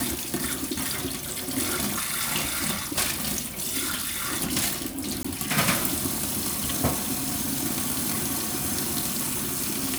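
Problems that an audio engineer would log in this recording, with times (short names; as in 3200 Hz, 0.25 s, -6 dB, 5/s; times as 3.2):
5.23–5.25 gap 15 ms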